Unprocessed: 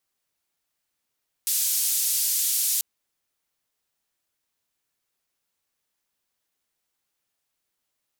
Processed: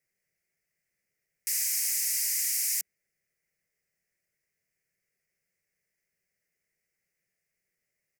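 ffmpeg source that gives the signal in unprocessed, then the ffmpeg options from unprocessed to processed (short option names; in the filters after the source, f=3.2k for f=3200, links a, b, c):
-f lavfi -i "anoisesrc=c=white:d=1.34:r=44100:seed=1,highpass=f=5400,lowpass=f=15000,volume=-15.4dB"
-af "firequalizer=gain_entry='entry(100,0);entry(170,7);entry(270,-9);entry(380,2);entry(600,0);entry(950,-18);entry(2000,9);entry(3500,-21);entry(5000,-3);entry(9600,-5)':delay=0.05:min_phase=1"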